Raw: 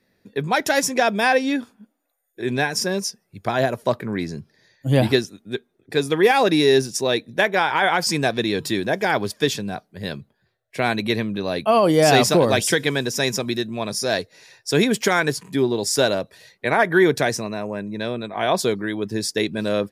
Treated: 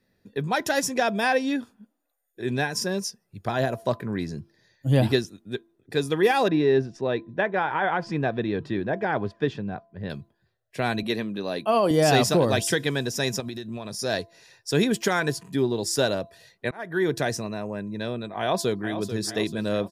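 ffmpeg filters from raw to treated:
-filter_complex "[0:a]asettb=1/sr,asplit=3[a][b][c];[a]atrim=end=6.484[d];[b]atrim=start=6.48:end=10.1,asetpts=PTS-STARTPTS,afade=t=in:d=0.004:c=qsin,afade=t=out:st=3.616:d=0.004:c=qsin,lowpass=2k[e];[c]atrim=start=10.096[f];[d][e]acrossfade=d=0.004:c1=hsin:c2=qsin[g];[g][f]acrossfade=d=0.004:c1=qsin:c2=hsin,asettb=1/sr,asplit=3[h][i][j];[h]atrim=end=11.034[k];[i]atrim=start=11.03:end=11.91,asetpts=PTS-STARTPTS,afade=t=in:d=0.004:c=qsin,afade=t=out:st=0.876:d=0.004:c=qsin,highpass=190[l];[j]atrim=start=11.906[m];[k][l]acrossfade=d=0.004:c1=hsin:c2=qsin[n];[n][m]acrossfade=d=0.004:c1=qsin:c2=hsin,asettb=1/sr,asplit=3[o][p][q];[o]atrim=end=13.404[r];[p]atrim=start=13.4:end=13.99,asetpts=PTS-STARTPTS,afade=t=in:d=0.004:c=qsin,afade=t=out:st=0.586:d=0.004:c=qsin,acompressor=threshold=-26dB:ratio=6:attack=3.2:release=140:knee=1:detection=peak[s];[q]atrim=start=13.986[t];[r][s]acrossfade=d=0.004:c1=hsin:c2=qsin[u];[u][t]acrossfade=d=0.004:c1=qsin:c2=hsin,asplit=2[v][w];[w]afade=t=in:st=18.39:d=0.01,afade=t=out:st=18.99:d=0.01,aecho=0:1:440|880|1320|1760|2200|2640:0.298538|0.164196|0.0903078|0.0496693|0.0273181|0.015025[x];[v][x]amix=inputs=2:normalize=0,asplit=2[y][z];[y]atrim=end=16.71,asetpts=PTS-STARTPTS,afade=t=out:st=16.706:d=0.004:c=hsin[aa];[z]atrim=start=16.71,asetpts=PTS-STARTPTS,afade=t=in:d=0.73:c=qsin[ab];[aa][ab]concat=n=2:v=0:a=1,lowshelf=f=130:g=7.5,bandreject=f=2.2k:w=12,bandreject=f=337.5:t=h:w=4,bandreject=f=675:t=h:w=4,bandreject=f=1.0125k:t=h:w=4,volume=-5dB"

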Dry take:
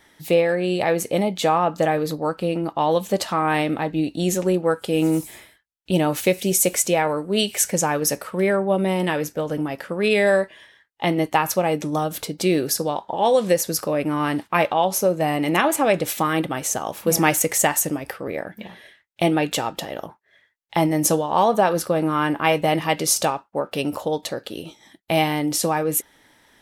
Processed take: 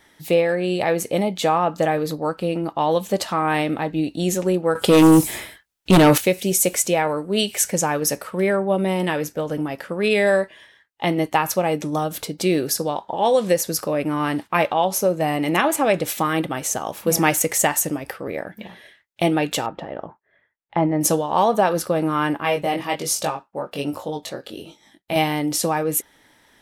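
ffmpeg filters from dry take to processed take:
-filter_complex "[0:a]asettb=1/sr,asplit=3[a][b][c];[a]atrim=end=4.754[d];[b]atrim=start=4.75:end=6.18,asetpts=PTS-STARTPTS,afade=t=in:d=0.004:c=qsin,afade=t=out:st=1.426:d=0.004:c=qsin,aeval=exprs='0.422*sin(PI/2*2.51*val(0)/0.422)':c=same[e];[c]atrim=start=6.176[f];[d][e]acrossfade=d=0.004:c1=hsin:c2=qsin[g];[g][f]acrossfade=d=0.004:c1=qsin:c2=hsin,asettb=1/sr,asplit=3[h][i][j];[h]atrim=end=19.664[k];[i]atrim=start=19.66:end=21.01,asetpts=PTS-STARTPTS,afade=t=in:d=0.004:c=qsin,afade=t=out:st=1.346:d=0.004:c=qsin,lowpass=1.6k[l];[j]atrim=start=21.006[m];[k][l]acrossfade=d=0.004:c1=hsin:c2=qsin[n];[n][m]acrossfade=d=0.004:c1=qsin:c2=hsin,asettb=1/sr,asplit=3[o][p][q];[o]atrim=end=22.374[r];[p]atrim=start=22.37:end=25.16,asetpts=PTS-STARTPTS,afade=t=in:d=0.004:c=qsin,afade=t=out:st=2.786:d=0.004:c=qsin,flanger=delay=20:depth=2.3:speed=1.2[s];[q]atrim=start=25.156[t];[r][s]acrossfade=d=0.004:c1=hsin:c2=qsin[u];[u][t]acrossfade=d=0.004:c1=qsin:c2=hsin"

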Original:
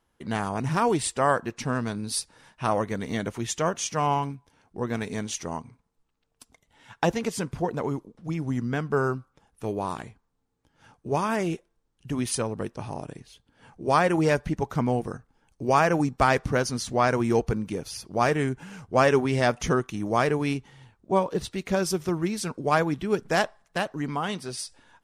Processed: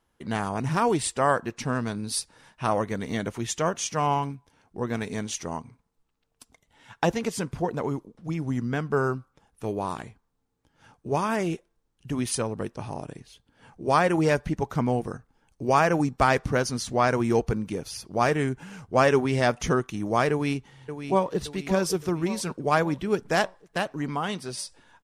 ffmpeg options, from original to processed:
-filter_complex "[0:a]asplit=2[a][b];[b]afade=t=in:st=20.31:d=0.01,afade=t=out:st=21.39:d=0.01,aecho=0:1:570|1140|1710|2280|2850|3420:0.334965|0.167483|0.0837414|0.0418707|0.0209353|0.0104677[c];[a][c]amix=inputs=2:normalize=0"

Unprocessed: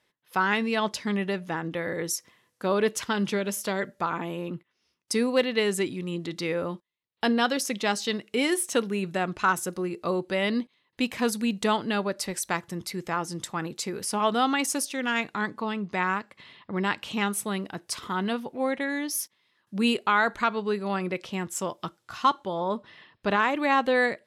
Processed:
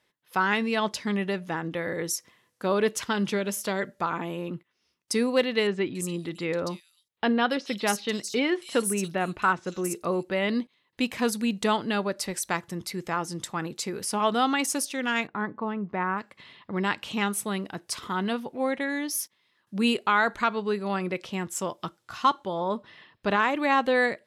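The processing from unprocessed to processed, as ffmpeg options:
-filter_complex "[0:a]asettb=1/sr,asplit=3[a][b][c];[a]atrim=end=5.674[d];[b]atrim=start=5.67:end=10.49,asetpts=PTS-STARTPTS,afade=t=in:d=0.004:c=qsin,afade=t=out:st=4.816:d=0.004:c=qsin,acrossover=split=4000[e][f];[f]adelay=280[g];[e][g]amix=inputs=2:normalize=0,atrim=end_sample=212562[h];[c]atrim=start=10.486[i];[d][h]acrossfade=d=0.004:c1=hsin:c2=qsin[j];[j][i]acrossfade=d=0.004:c1=qsin:c2=hsin,asplit=3[k][l][m];[k]afade=t=out:st=15.26:d=0.02[n];[l]lowpass=1.5k,afade=t=in:st=15.26:d=0.02,afade=t=out:st=16.17:d=0.02[o];[m]afade=t=in:st=16.17:d=0.02[p];[n][o][p]amix=inputs=3:normalize=0"

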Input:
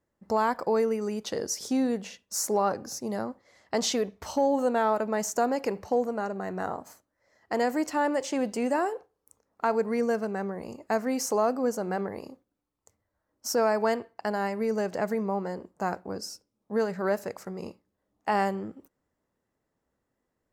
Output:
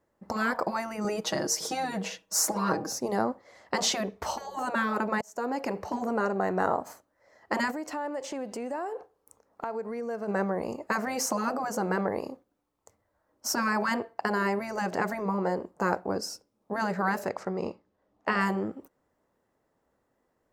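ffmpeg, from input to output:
-filter_complex "[0:a]asettb=1/sr,asplit=3[a][b][c];[a]atrim=end=1.044[d];[b]atrim=start=1.04:end=2.92,asetpts=PTS-STARTPTS,afade=t=in:d=0.004:c=qsin,afade=t=out:st=1.876:d=0.004:c=qsin,aecho=1:1:6.3:0.9,atrim=end_sample=82908[e];[c]atrim=start=2.916[f];[d][e]acrossfade=d=0.004:c1=hsin:c2=qsin[g];[g][f]acrossfade=d=0.004:c1=qsin:c2=hsin,asplit=3[h][i][j];[h]afade=t=out:st=7.7:d=0.02[k];[i]acompressor=threshold=-39dB:ratio=5:attack=3.2:release=140:knee=1:detection=peak,afade=t=in:st=7.7:d=0.02,afade=t=out:st=10.27:d=0.02[l];[j]afade=t=in:st=10.27:d=0.02[m];[k][l][m]amix=inputs=3:normalize=0,asettb=1/sr,asplit=3[n][o][p];[n]atrim=end=17.294[q];[o]atrim=start=17.29:end=18.41,asetpts=PTS-STARTPTS,afade=t=in:d=0.004:c=qsin,afade=t=out:st=1.116:d=0.004:c=qsin,lowpass=5.6k[r];[p]atrim=start=18.406[s];[q][r]acrossfade=d=0.004:c1=hsin:c2=qsin[t];[t][s]acrossfade=d=0.004:c1=qsin:c2=hsin,asplit=2[u][v];[u]atrim=end=5.21,asetpts=PTS-STARTPTS,afade=t=out:st=5.206:d=0.004:c=hsin[w];[v]atrim=start=5.21,asetpts=PTS-STARTPTS,afade=t=in:d=0.7[x];[w][x]concat=n=2:v=0:a=1,equalizer=f=740:t=o:w=2.6:g=7,afftfilt=real='re*lt(hypot(re,im),0.355)':imag='im*lt(hypot(re,im),0.355)':win_size=1024:overlap=0.75,volume=1.5dB"

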